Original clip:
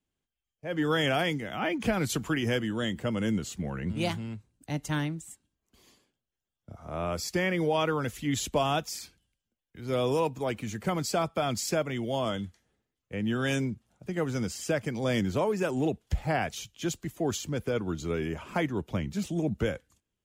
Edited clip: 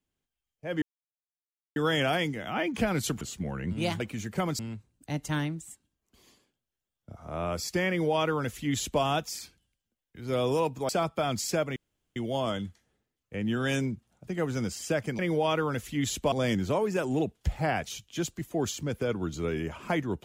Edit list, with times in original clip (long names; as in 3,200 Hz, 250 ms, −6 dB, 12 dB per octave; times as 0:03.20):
0:00.82: splice in silence 0.94 s
0:02.27–0:03.40: remove
0:07.49–0:08.62: duplicate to 0:14.98
0:10.49–0:11.08: move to 0:04.19
0:11.95: splice in room tone 0.40 s